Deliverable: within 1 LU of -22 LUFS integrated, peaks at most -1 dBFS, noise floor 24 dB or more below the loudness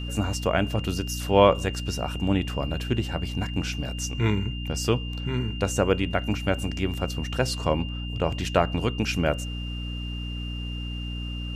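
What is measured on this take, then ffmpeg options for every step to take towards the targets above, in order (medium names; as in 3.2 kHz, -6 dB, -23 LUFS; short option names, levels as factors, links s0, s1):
hum 60 Hz; highest harmonic 300 Hz; hum level -30 dBFS; steady tone 2.8 kHz; tone level -38 dBFS; loudness -27.0 LUFS; peak level -2.5 dBFS; loudness target -22.0 LUFS
-> -af "bandreject=f=60:t=h:w=6,bandreject=f=120:t=h:w=6,bandreject=f=180:t=h:w=6,bandreject=f=240:t=h:w=6,bandreject=f=300:t=h:w=6"
-af "bandreject=f=2800:w=30"
-af "volume=1.78,alimiter=limit=0.891:level=0:latency=1"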